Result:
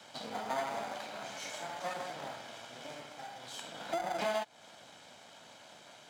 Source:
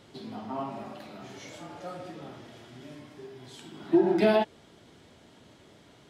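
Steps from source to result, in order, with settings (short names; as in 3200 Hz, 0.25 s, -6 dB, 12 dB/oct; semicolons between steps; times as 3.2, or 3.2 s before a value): minimum comb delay 1.3 ms; in parallel at -9 dB: sample-and-hold 16×; on the sum: bell 7100 Hz +4 dB 0.71 oct; compressor 8:1, threshold -32 dBFS, peak gain reduction 14 dB; weighting filter A; gain +3.5 dB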